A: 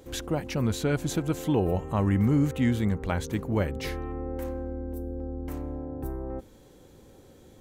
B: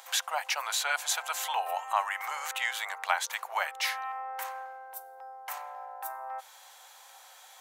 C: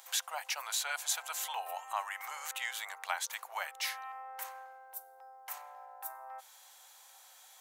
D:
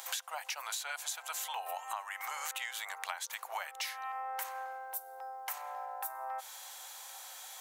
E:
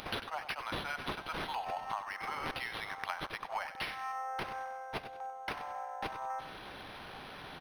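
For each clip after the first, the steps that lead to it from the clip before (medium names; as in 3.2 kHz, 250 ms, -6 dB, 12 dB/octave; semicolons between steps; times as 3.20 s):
steep high-pass 730 Hz 48 dB/octave; in parallel at -0.5 dB: compression, threshold -44 dBFS, peak gain reduction 15.5 dB; on the sum: trim +5 dB
treble shelf 4.3 kHz +8 dB; trim -8.5 dB
compression 12:1, threshold -45 dBFS, peak gain reduction 17 dB; trim +9.5 dB
on a send: feedback delay 96 ms, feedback 29%, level -11.5 dB; on the sum: decimation joined by straight lines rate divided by 6×; trim +2 dB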